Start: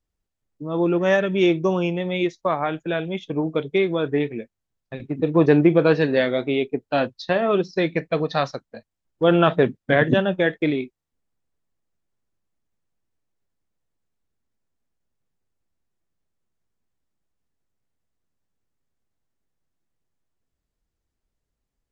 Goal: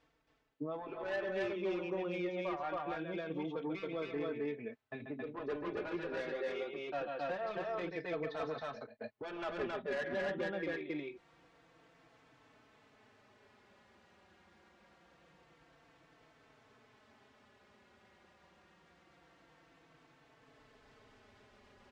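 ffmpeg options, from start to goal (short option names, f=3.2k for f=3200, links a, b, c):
-filter_complex "[0:a]lowpass=2.7k,areverse,acompressor=mode=upward:threshold=-32dB:ratio=2.5,areverse,highpass=f=480:p=1,aecho=1:1:137|271.1:0.316|0.891,asoftclip=type=tanh:threshold=-17.5dB,acompressor=threshold=-39dB:ratio=1.5,alimiter=level_in=9dB:limit=-24dB:level=0:latency=1:release=344,volume=-9dB,asplit=2[a][b];[b]adelay=4,afreqshift=-0.25[c];[a][c]amix=inputs=2:normalize=1,volume=3.5dB"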